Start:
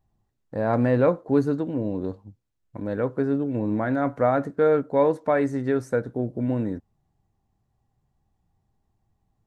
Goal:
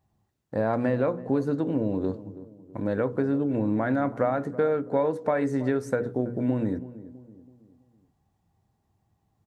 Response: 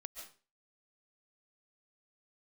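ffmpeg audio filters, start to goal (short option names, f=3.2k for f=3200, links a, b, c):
-filter_complex "[0:a]highpass=68,bandreject=f=60:t=h:w=6,bandreject=f=120:t=h:w=6,bandreject=f=180:t=h:w=6,bandreject=f=240:t=h:w=6,bandreject=f=300:t=h:w=6,bandreject=f=360:t=h:w=6,bandreject=f=420:t=h:w=6,bandreject=f=480:t=h:w=6,acompressor=threshold=-24dB:ratio=6,asplit=2[a][b];[b]adelay=328,lowpass=f=880:p=1,volume=-15.5dB,asplit=2[c][d];[d]adelay=328,lowpass=f=880:p=1,volume=0.46,asplit=2[e][f];[f]adelay=328,lowpass=f=880:p=1,volume=0.46,asplit=2[g][h];[h]adelay=328,lowpass=f=880:p=1,volume=0.46[i];[c][e][g][i]amix=inputs=4:normalize=0[j];[a][j]amix=inputs=2:normalize=0,volume=3dB"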